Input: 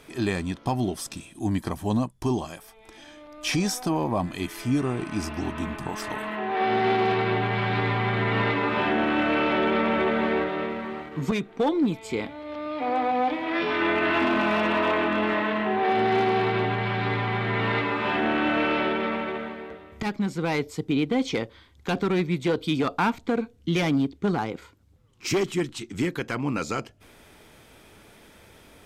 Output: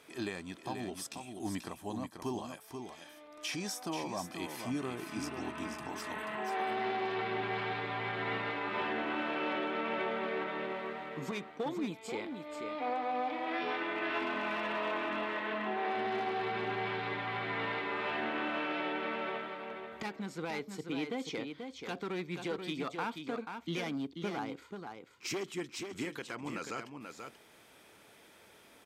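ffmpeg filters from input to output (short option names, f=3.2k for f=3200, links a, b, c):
-af "highpass=f=350:p=1,alimiter=limit=-20.5dB:level=0:latency=1:release=421,aecho=1:1:485:0.473,volume=-6.5dB"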